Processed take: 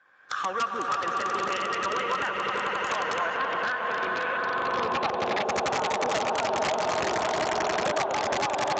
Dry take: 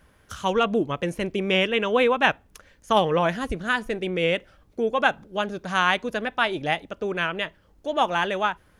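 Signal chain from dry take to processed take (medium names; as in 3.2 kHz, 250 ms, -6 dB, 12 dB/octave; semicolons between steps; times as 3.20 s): drifting ripple filter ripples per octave 1.8, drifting +0.26 Hz, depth 8 dB; recorder AGC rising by 29 dB/s; saturation -15 dBFS, distortion -14 dB; high-pass 170 Hz 12 dB/octave; echo with a slow build-up 89 ms, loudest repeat 8, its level -7 dB; band-pass sweep 1.6 kHz -> 760 Hz, 4.26–5.31 s; compression 8:1, threshold -28 dBFS, peak gain reduction 10 dB; peaking EQ 2.1 kHz -6.5 dB 1.2 oct; integer overflow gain 25.5 dB; 3.37–5.44 s: low-pass 4.8 kHz 24 dB/octave; dynamic bell 1.2 kHz, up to +4 dB, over -51 dBFS, Q 4.7; trim +6 dB; Speex 17 kbps 16 kHz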